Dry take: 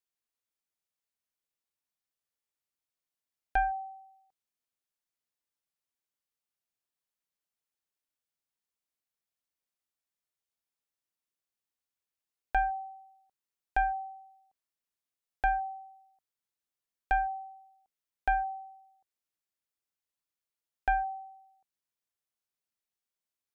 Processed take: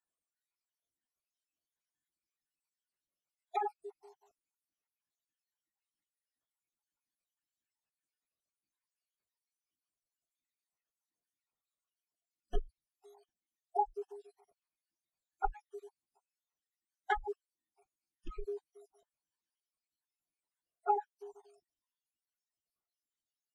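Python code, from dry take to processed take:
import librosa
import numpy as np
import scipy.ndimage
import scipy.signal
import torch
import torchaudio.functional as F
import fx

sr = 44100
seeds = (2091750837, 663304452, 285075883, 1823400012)

y = fx.spec_dropout(x, sr, seeds[0], share_pct=68)
y = fx.pitch_keep_formants(y, sr, semitones=-11.0)
y = y * librosa.db_to_amplitude(1.0)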